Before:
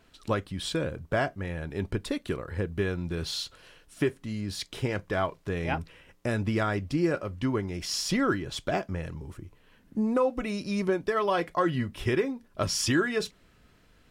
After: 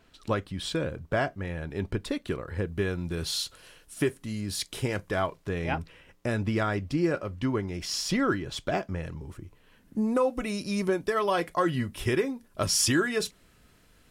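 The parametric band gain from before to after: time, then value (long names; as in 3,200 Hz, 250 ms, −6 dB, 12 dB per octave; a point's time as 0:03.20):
parametric band 11,000 Hz 1.3 octaves
0:02.39 −2 dB
0:03.43 +10 dB
0:04.97 +10 dB
0:05.59 −1 dB
0:09.21 −1 dB
0:10.23 +9.5 dB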